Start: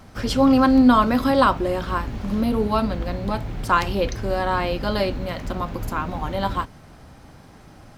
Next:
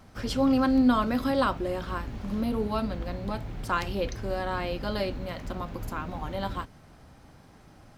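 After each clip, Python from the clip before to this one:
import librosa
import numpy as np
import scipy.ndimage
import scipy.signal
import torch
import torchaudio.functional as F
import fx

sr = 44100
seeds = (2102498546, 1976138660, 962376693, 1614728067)

y = fx.dynamic_eq(x, sr, hz=990.0, q=2.3, threshold_db=-30.0, ratio=4.0, max_db=-4)
y = y * 10.0 ** (-7.0 / 20.0)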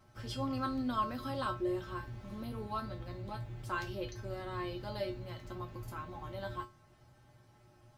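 y = fx.comb_fb(x, sr, f0_hz=120.0, decay_s=0.22, harmonics='odd', damping=0.0, mix_pct=90)
y = y * 10.0 ** (1.0 / 20.0)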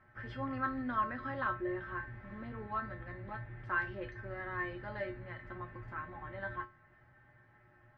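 y = fx.lowpass_res(x, sr, hz=1800.0, q=6.2)
y = y * 10.0 ** (-3.5 / 20.0)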